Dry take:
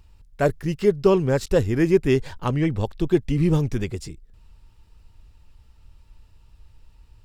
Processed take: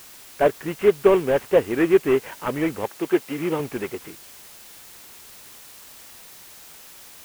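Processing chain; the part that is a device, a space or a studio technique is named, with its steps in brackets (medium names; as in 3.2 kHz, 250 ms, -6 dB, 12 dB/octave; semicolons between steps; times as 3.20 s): army field radio (band-pass 360–3200 Hz; CVSD coder 16 kbps; white noise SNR 21 dB); 2.89–3.60 s: high-pass 250 Hz 6 dB/octave; trim +5 dB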